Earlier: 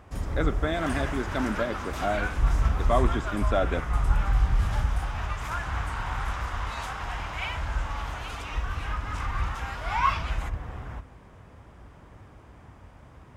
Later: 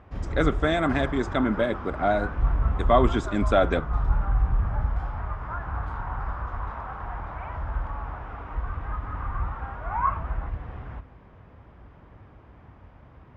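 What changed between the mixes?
speech +5.0 dB
first sound: add high-frequency loss of the air 250 metres
second sound: add low-pass filter 1,400 Hz 24 dB per octave

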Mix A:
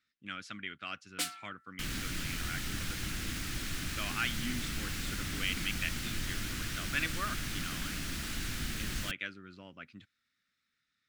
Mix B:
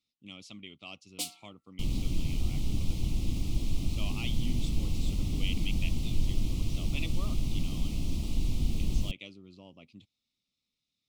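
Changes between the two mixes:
second sound: add spectral tilt −2.5 dB per octave
master: add Butterworth band-reject 1,600 Hz, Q 0.9

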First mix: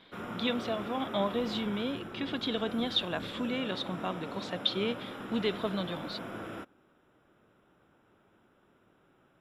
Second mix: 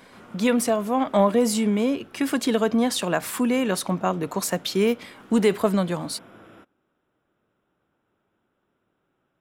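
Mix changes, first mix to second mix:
speech: remove transistor ladder low-pass 3,800 Hz, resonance 75%
background −7.5 dB

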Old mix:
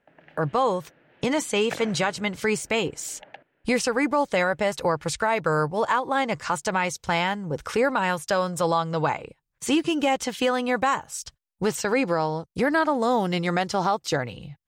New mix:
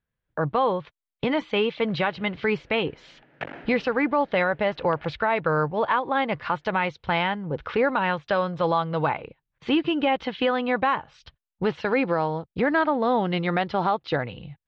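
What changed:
speech: add Butterworth low-pass 3,800 Hz 36 dB per octave
background: entry +1.70 s

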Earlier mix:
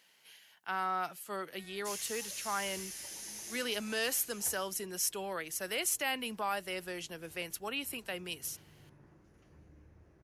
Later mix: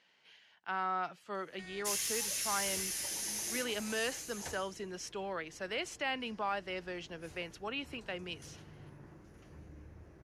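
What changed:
speech: add high-frequency loss of the air 150 metres
background +6.5 dB

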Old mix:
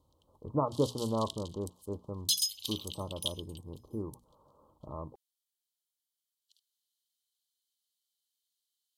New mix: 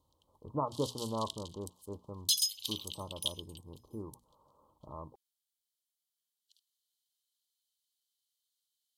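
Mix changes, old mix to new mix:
speech −5.5 dB
master: add parametric band 960 Hz +5 dB 0.58 octaves

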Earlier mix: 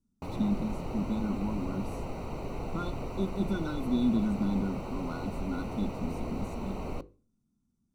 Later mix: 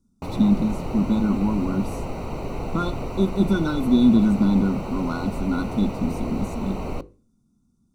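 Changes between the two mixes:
speech +11.0 dB
background +7.0 dB

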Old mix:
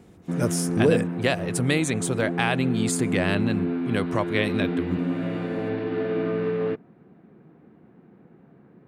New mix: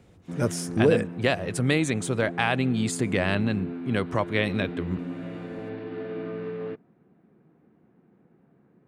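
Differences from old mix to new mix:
speech: add high-shelf EQ 8,200 Hz −9.5 dB
background −8.0 dB

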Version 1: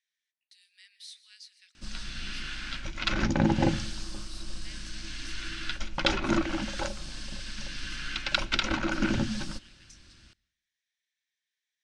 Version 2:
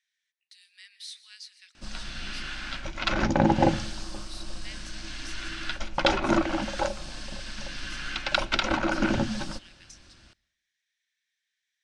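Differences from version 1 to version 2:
speech +4.5 dB
master: add parametric band 700 Hz +9 dB 1.5 octaves

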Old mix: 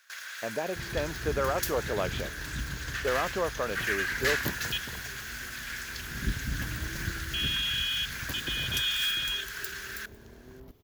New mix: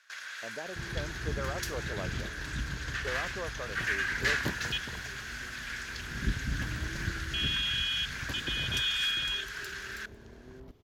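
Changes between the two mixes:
speech −9.0 dB
master: add high-frequency loss of the air 53 metres

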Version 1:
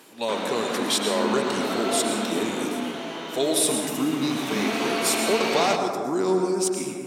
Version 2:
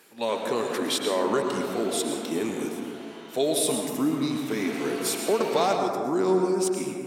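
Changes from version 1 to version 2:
speech: add parametric band 6,800 Hz −5 dB 2.1 octaves
background −11.5 dB

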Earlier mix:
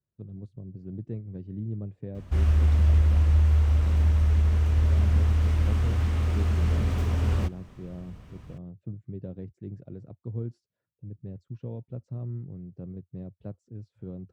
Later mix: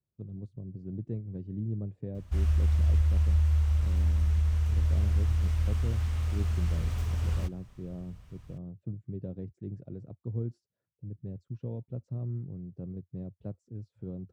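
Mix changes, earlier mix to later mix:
background: add parametric band 290 Hz −14.5 dB 2.6 octaves
master: add parametric band 2,100 Hz −5 dB 2.6 octaves

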